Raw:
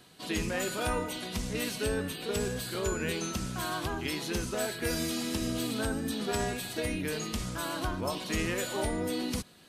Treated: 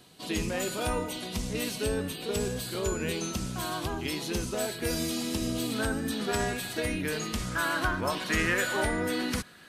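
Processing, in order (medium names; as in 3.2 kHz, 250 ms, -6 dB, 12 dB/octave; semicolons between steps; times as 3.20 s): peaking EQ 1.6 kHz -4 dB 0.89 oct, from 5.72 s +3.5 dB, from 7.51 s +11 dB; trim +1.5 dB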